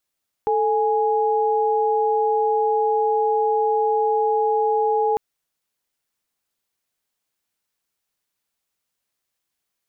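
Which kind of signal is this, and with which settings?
chord A4/G#5 sine, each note -19.5 dBFS 4.70 s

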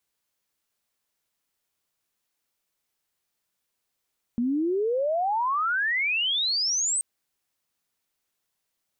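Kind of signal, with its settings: chirp logarithmic 230 Hz -> 8500 Hz -22 dBFS -> -22.5 dBFS 2.63 s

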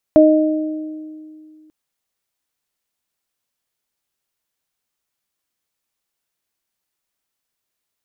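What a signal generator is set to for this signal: additive tone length 1.54 s, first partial 310 Hz, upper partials 1.5 dB, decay 2.42 s, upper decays 1.29 s, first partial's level -8 dB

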